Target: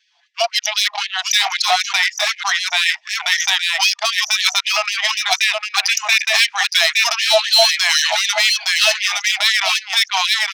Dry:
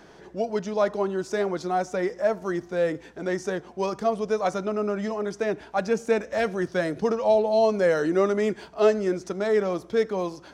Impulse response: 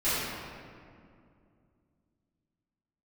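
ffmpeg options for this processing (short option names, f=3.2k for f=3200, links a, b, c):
-filter_complex "[0:a]anlmdn=10,asplit=2[a][b];[b]acompressor=threshold=-33dB:ratio=16,volume=1.5dB[c];[a][c]amix=inputs=2:normalize=0,aexciter=amount=13.1:drive=5.2:freq=2.3k,highpass=440,lowpass=5.3k,asoftclip=type=tanh:threshold=-11dB,aeval=exprs='0.282*(cos(1*acos(clip(val(0)/0.282,-1,1)))-cos(1*PI/2))+0.0112*(cos(2*acos(clip(val(0)/0.282,-1,1)))-cos(2*PI/2))+0.00316*(cos(4*acos(clip(val(0)/0.282,-1,1)))-cos(4*PI/2))+0.0178*(cos(6*acos(clip(val(0)/0.282,-1,1)))-cos(6*PI/2))':c=same,asplit=2[d][e];[e]aecho=0:1:864:0.355[f];[d][f]amix=inputs=2:normalize=0,alimiter=level_in=18.5dB:limit=-1dB:release=50:level=0:latency=1,afftfilt=real='re*gte(b*sr/1024,610*pow(1700/610,0.5+0.5*sin(2*PI*3.9*pts/sr)))':imag='im*gte(b*sr/1024,610*pow(1700/610,0.5+0.5*sin(2*PI*3.9*pts/sr)))':win_size=1024:overlap=0.75,volume=-2dB"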